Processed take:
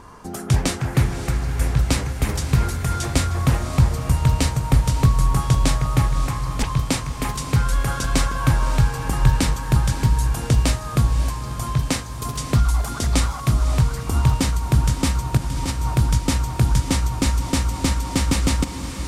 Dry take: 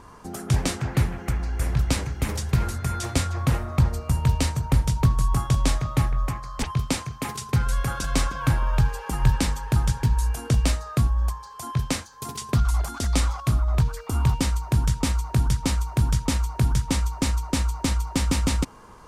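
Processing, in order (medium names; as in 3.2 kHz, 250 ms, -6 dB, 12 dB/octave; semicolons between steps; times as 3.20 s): 15.37–15.96 s: compressor with a negative ratio -27 dBFS, ratio -1; echo that smears into a reverb 582 ms, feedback 64%, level -10 dB; trim +3.5 dB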